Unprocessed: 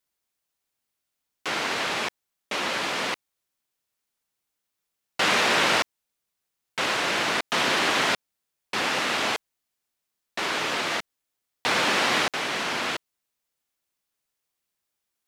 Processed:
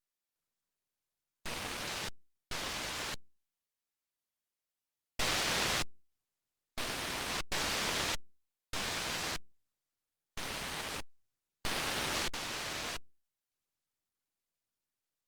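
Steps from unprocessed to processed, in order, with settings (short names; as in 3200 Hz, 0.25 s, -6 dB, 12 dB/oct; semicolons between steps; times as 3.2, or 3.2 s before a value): 9.17–10.45 Bessel high-pass 370 Hz, order 4; full-wave rectifier; gain -7 dB; Opus 48 kbps 48000 Hz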